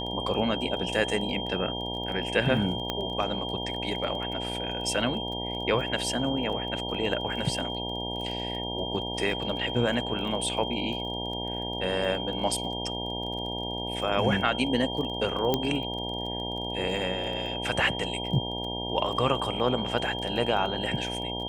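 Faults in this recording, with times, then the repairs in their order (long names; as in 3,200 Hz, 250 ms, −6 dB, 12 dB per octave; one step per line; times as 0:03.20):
mains buzz 60 Hz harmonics 16 −35 dBFS
surface crackle 22 per second −36 dBFS
whistle 3,200 Hz −34 dBFS
0:02.90: click −14 dBFS
0:15.54: click −10 dBFS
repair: click removal
hum removal 60 Hz, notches 16
notch filter 3,200 Hz, Q 30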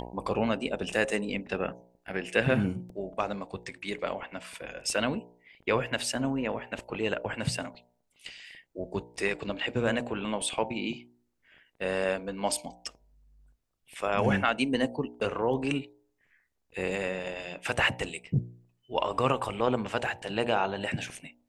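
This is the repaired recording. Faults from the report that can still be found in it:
0:02.90: click
0:15.54: click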